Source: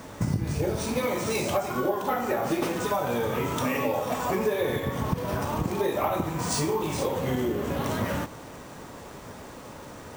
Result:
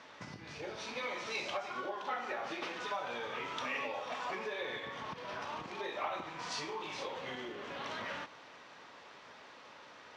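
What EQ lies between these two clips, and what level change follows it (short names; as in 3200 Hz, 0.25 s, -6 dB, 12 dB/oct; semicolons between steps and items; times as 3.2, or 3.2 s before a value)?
band-pass 5000 Hz, Q 0.65; air absorption 250 m; +2.5 dB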